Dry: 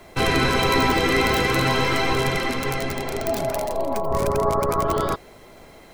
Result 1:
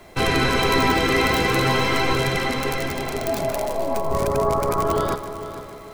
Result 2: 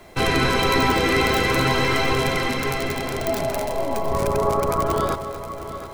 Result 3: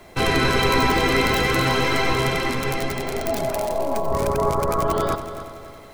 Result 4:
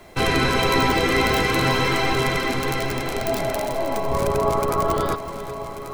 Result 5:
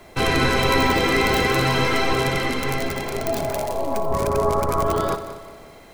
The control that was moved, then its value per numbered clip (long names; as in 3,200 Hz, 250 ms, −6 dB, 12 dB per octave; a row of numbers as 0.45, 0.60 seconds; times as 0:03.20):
echo machine with several playback heads, delay time: 151, 238, 93, 379, 60 milliseconds